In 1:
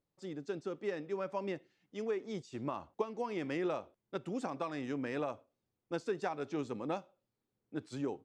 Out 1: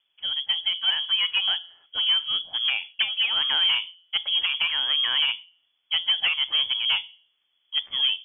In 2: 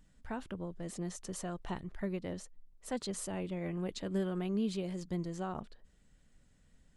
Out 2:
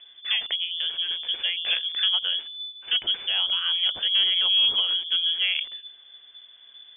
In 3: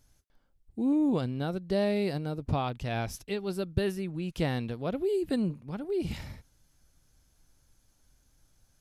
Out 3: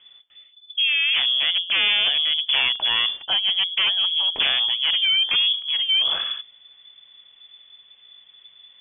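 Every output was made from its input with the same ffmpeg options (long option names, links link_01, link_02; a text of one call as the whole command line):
ffmpeg -i in.wav -af "bandreject=frequency=173.8:width_type=h:width=4,bandreject=frequency=347.6:width_type=h:width=4,bandreject=frequency=521.4:width_type=h:width=4,bandreject=frequency=695.2:width_type=h:width=4,aeval=exprs='0.188*sin(PI/2*4.47*val(0)/0.188)':channel_layout=same,lowpass=frequency=3000:width_type=q:width=0.5098,lowpass=frequency=3000:width_type=q:width=0.6013,lowpass=frequency=3000:width_type=q:width=0.9,lowpass=frequency=3000:width_type=q:width=2.563,afreqshift=-3500,volume=-2dB" out.wav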